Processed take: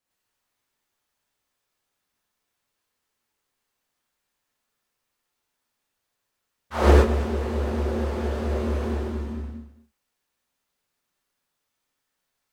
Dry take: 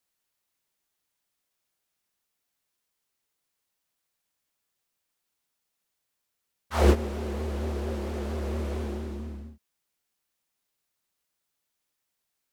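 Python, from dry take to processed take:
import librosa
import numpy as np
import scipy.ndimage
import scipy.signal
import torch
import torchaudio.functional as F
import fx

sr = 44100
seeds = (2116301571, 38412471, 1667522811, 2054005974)

y = fx.high_shelf(x, sr, hz=3900.0, db=-8.0)
y = y + 10.0 ** (-14.5 / 20.0) * np.pad(y, (int(219 * sr / 1000.0), 0))[:len(y)]
y = fx.rev_gated(y, sr, seeds[0], gate_ms=130, shape='rising', drr_db=-5.5)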